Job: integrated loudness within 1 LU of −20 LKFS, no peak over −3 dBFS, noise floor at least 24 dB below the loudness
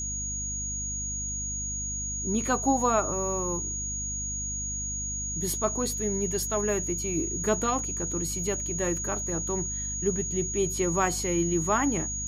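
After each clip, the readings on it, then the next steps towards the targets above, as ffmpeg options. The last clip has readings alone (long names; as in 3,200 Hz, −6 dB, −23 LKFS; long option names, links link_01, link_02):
mains hum 50 Hz; hum harmonics up to 250 Hz; level of the hum −36 dBFS; interfering tone 6,700 Hz; level of the tone −31 dBFS; integrated loudness −28.0 LKFS; sample peak −10.5 dBFS; target loudness −20.0 LKFS
→ -af "bandreject=frequency=50:width_type=h:width=6,bandreject=frequency=100:width_type=h:width=6,bandreject=frequency=150:width_type=h:width=6,bandreject=frequency=200:width_type=h:width=6,bandreject=frequency=250:width_type=h:width=6"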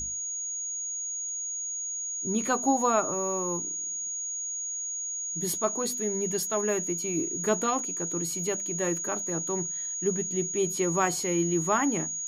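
mains hum none found; interfering tone 6,700 Hz; level of the tone −31 dBFS
→ -af "bandreject=frequency=6700:width=30"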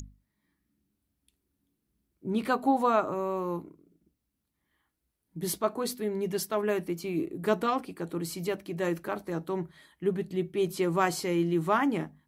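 interfering tone none found; integrated loudness −30.0 LKFS; sample peak −11.5 dBFS; target loudness −20.0 LKFS
→ -af "volume=10dB,alimiter=limit=-3dB:level=0:latency=1"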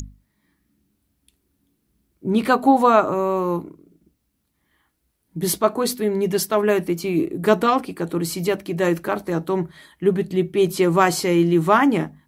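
integrated loudness −20.0 LKFS; sample peak −3.0 dBFS; background noise floor −72 dBFS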